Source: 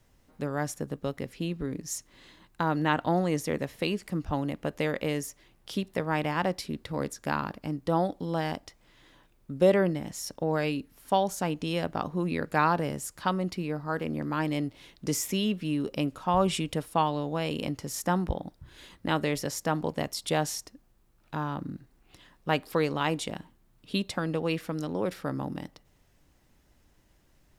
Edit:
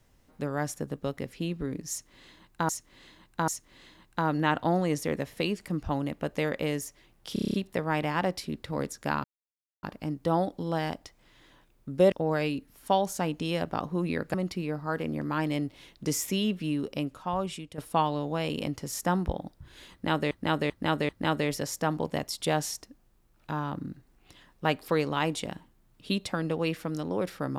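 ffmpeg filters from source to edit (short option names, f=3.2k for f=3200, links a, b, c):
-filter_complex "[0:a]asplit=17[a][b][c][d][e][f][g][h][i][j][k][l][m][n][o][p][q];[a]atrim=end=2.692[r];[b]atrim=start=1.898:end=2.692[s];[c]atrim=start=1.898:end=5.782[t];[d]atrim=start=5.748:end=5.782[u];[e]atrim=start=5.748:end=5.782[v];[f]atrim=start=5.748:end=5.782[w];[g]atrim=start=5.748:end=5.782[x];[h]atrim=start=5.748:end=5.782[y];[i]atrim=start=5.748:end=5.782[z];[j]atrim=start=5.748:end=7.45,asetpts=PTS-STARTPTS,afade=t=out:st=1.698:d=0.004:c=hsin,apad=pad_dur=0.59[aa];[k]atrim=start=7.45:end=9.742,asetpts=PTS-STARTPTS,afade=t=in:d=0.004:c=hsin[ab];[l]atrim=start=10.338:end=12.562[ac];[m]atrim=start=13.348:end=16.79,asetpts=PTS-STARTPTS,afade=t=out:st=2.312:d=1.13:silence=0.199526[ad];[n]atrim=start=16.79:end=19.322,asetpts=PTS-STARTPTS,afade=t=in:d=0.004:c=hsin:silence=0.199526[ae];[o]atrim=start=18.928:end=19.322[af];[p]atrim=start=18.928:end=19.322[ag];[q]atrim=start=18.928[ah];[r][s]acrossfade=d=0.004:c1=hsin:c2=hsin[ai];[ai][t]acrossfade=d=0.004:c1=hsin:c2=hsin[aj];[aj][u]acrossfade=d=0.004:c1=hsin:c2=hsin[ak];[ak][v]acrossfade=d=0.004:c1=hsin:c2=hsin[al];[al][w]acrossfade=d=0.004:c1=hsin:c2=hsin[am];[am][x]acrossfade=d=0.004:c1=hsin:c2=hsin[an];[an][y]acrossfade=d=0.004:c1=hsin:c2=hsin[ao];[ao][z]acrossfade=d=0.004:c1=hsin:c2=hsin[ap];[aa][ab]concat=n=2:v=0:a=1[aq];[ap][aq]acrossfade=d=0.004:c1=hsin:c2=hsin[ar];[ar][ac]acrossfade=d=0.004:c1=hsin:c2=hsin[as];[ad][ae]concat=n=2:v=0:a=1[at];[as][at]acrossfade=d=0.004:c1=hsin:c2=hsin[au];[au][af]acrossfade=d=0.004:c1=hsin:c2=hsin[av];[av][ag]acrossfade=d=0.004:c1=hsin:c2=hsin[aw];[aw][ah]acrossfade=d=0.004:c1=hsin:c2=hsin"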